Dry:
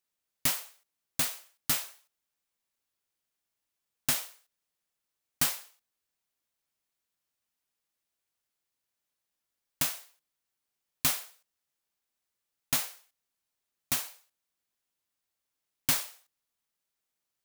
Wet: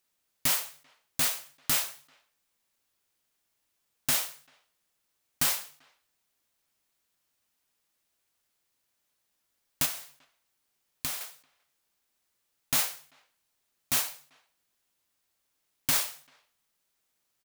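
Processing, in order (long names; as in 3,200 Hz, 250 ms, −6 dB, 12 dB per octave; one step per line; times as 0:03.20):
brickwall limiter −21 dBFS, peak gain reduction 9 dB
0:09.85–0:11.21: downward compressor 6 to 1, threshold −38 dBFS, peak gain reduction 9.5 dB
far-end echo of a speakerphone 390 ms, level −29 dB
on a send at −22 dB: convolution reverb RT60 0.40 s, pre-delay 3 ms
on the sum: level +7.5 dB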